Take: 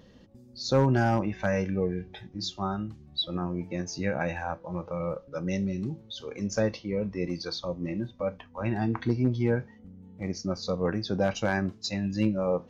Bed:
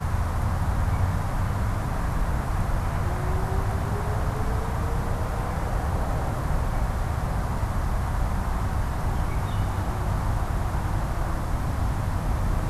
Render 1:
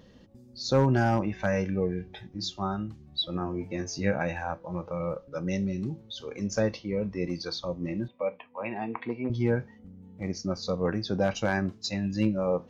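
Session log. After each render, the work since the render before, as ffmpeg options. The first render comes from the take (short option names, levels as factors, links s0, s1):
-filter_complex "[0:a]asettb=1/sr,asplit=3[s0][s1][s2];[s0]atrim=end=3.384[s3];[s1]atrim=start=3.38:end=4.16,asetpts=PTS-STARTPTS,afade=t=in:d=0.004:c=qsin,afade=t=out:st=0.776:d=0.004:c=qsin,asplit=2[s4][s5];[s5]adelay=20,volume=0.501[s6];[s4][s6]amix=inputs=2:normalize=0,atrim=end_sample=34398[s7];[s2]atrim=start=4.156[s8];[s3][s7]acrossfade=d=0.004:c1=hsin:c2=qsin[s9];[s9][s8]acrossfade=d=0.004:c1=qsin:c2=hsin,asettb=1/sr,asplit=3[s10][s11][s12];[s10]atrim=end=8.084[s13];[s11]atrim=start=8.08:end=9.3,asetpts=PTS-STARTPTS,afade=t=in:d=0.004:c=qsin,afade=t=out:st=1.216:d=0.004:c=qsin,highpass=300,equalizer=f=330:t=q:w=4:g=-6,equalizer=f=490:t=q:w=4:g=3,equalizer=f=1000:t=q:w=4:g=3,equalizer=f=1500:t=q:w=4:g=-10,equalizer=f=2400:t=q:w=4:g=8,lowpass=f=2900:w=0.5412,lowpass=f=2900:w=1.3066[s14];[s12]atrim=start=9.296[s15];[s13][s14]acrossfade=d=0.004:c1=hsin:c2=qsin[s16];[s16][s15]acrossfade=d=0.004:c1=qsin:c2=hsin"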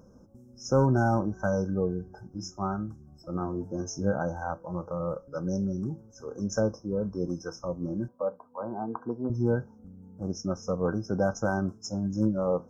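-af "afftfilt=real='re*(1-between(b*sr/4096,1600,5100))':imag='im*(1-between(b*sr/4096,1600,5100))':win_size=4096:overlap=0.75"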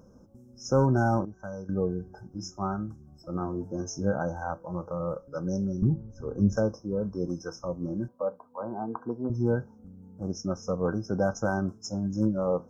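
-filter_complex "[0:a]asettb=1/sr,asplit=3[s0][s1][s2];[s0]atrim=end=5.824[s3];[s1]atrim=start=5.82:end=6.57,asetpts=PTS-STARTPTS,afade=t=in:d=0.004:c=qsin,afade=t=out:st=0.746:d=0.004:c=qsin,aemphasis=mode=reproduction:type=riaa[s4];[s2]atrim=start=6.566[s5];[s3][s4]acrossfade=d=0.004:c1=hsin:c2=qsin[s6];[s6][s5]acrossfade=d=0.004:c1=qsin:c2=hsin,asplit=3[s7][s8][s9];[s7]atrim=end=1.252[s10];[s8]atrim=start=1.248:end=1.692,asetpts=PTS-STARTPTS,volume=0.282[s11];[s9]atrim=start=1.688[s12];[s10][s11]acrossfade=d=0.004:c1=hsin:c2=hsin[s13];[s13][s12]acrossfade=d=0.004:c1=hsin:c2=hsin"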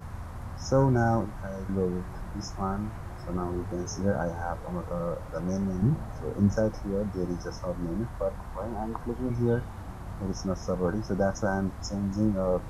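-filter_complex "[1:a]volume=0.211[s0];[0:a][s0]amix=inputs=2:normalize=0"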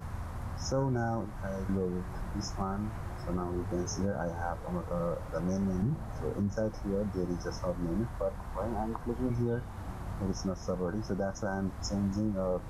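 -af "alimiter=limit=0.0841:level=0:latency=1:release=337"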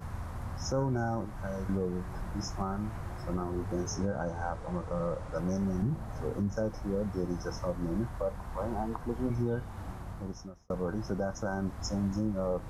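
-filter_complex "[0:a]asettb=1/sr,asplit=3[s0][s1][s2];[s0]atrim=end=3.954[s3];[s1]atrim=start=3.95:end=5.37,asetpts=PTS-STARTPTS,afade=t=in:d=0.004:c=qsin,afade=t=out:st=1.416:d=0.004:c=qsin,lowpass=f=10000:w=0.5412,lowpass=f=10000:w=1.3066[s4];[s2]atrim=start=5.366[s5];[s3][s4]acrossfade=d=0.004:c1=hsin:c2=qsin[s6];[s6][s5]acrossfade=d=0.004:c1=qsin:c2=hsin,asplit=2[s7][s8];[s7]atrim=end=10.7,asetpts=PTS-STARTPTS,afade=t=out:st=9.84:d=0.86[s9];[s8]atrim=start=10.7,asetpts=PTS-STARTPTS,afade=t=in:d=0.004:c=hsin[s10];[s9][s10]concat=n=2:v=0:a=1"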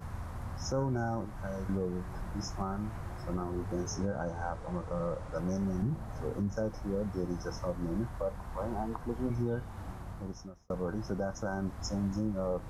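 -af "volume=0.841"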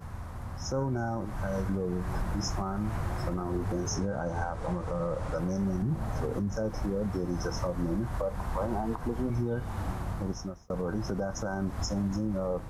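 -af "dynaudnorm=f=740:g=3:m=2.82,alimiter=limit=0.0794:level=0:latency=1:release=121"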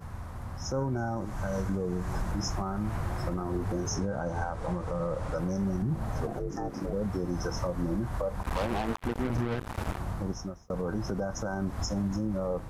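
-filter_complex "[0:a]asettb=1/sr,asplit=3[s0][s1][s2];[s0]atrim=end=1.164[s3];[s1]atrim=start=1.16:end=2.32,asetpts=PTS-STARTPTS,afade=t=in:d=0.004:c=qsin,afade=t=out:st=1.156:d=0.004:c=qsin,equalizer=f=6600:t=o:w=0.62:g=5.5[s4];[s2]atrim=start=2.316[s5];[s3][s4]acrossfade=d=0.004:c1=hsin:c2=qsin[s6];[s6][s5]acrossfade=d=0.004:c1=qsin:c2=hsin,asettb=1/sr,asplit=3[s7][s8][s9];[s7]atrim=end=6.274[s10];[s8]atrim=start=6.27:end=6.93,asetpts=PTS-STARTPTS,afade=t=in:d=0.004:c=qsin,afade=t=out:st=0.656:d=0.004:c=qsin,aeval=exprs='val(0)*sin(2*PI*240*n/s)':c=same[s11];[s9]atrim=start=6.926[s12];[s10][s11]acrossfade=d=0.004:c1=hsin:c2=qsin[s13];[s13][s12]acrossfade=d=0.004:c1=qsin:c2=hsin,asettb=1/sr,asplit=3[s14][s15][s16];[s14]atrim=end=8.434[s17];[s15]atrim=start=8.43:end=9.98,asetpts=PTS-STARTPTS,afade=t=in:d=0.004:c=qsin,afade=t=out:st=1.546:d=0.004:c=qsin,acrusher=bits=4:mix=0:aa=0.5[s18];[s16]atrim=start=9.976[s19];[s17][s18]acrossfade=d=0.004:c1=hsin:c2=qsin[s20];[s20][s19]acrossfade=d=0.004:c1=qsin:c2=hsin"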